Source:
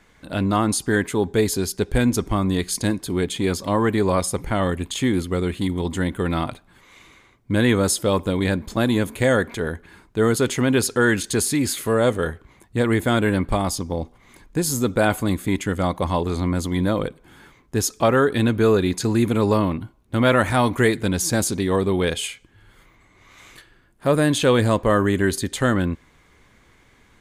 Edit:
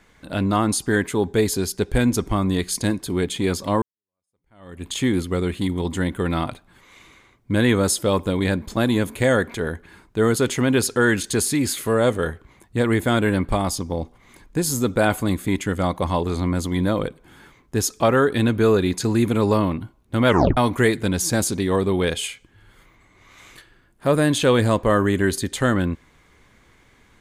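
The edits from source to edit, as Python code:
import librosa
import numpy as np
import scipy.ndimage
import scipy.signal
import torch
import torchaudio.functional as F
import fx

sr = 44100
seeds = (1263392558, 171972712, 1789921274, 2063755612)

y = fx.edit(x, sr, fx.fade_in_span(start_s=3.82, length_s=1.06, curve='exp'),
    fx.tape_stop(start_s=20.28, length_s=0.29), tone=tone)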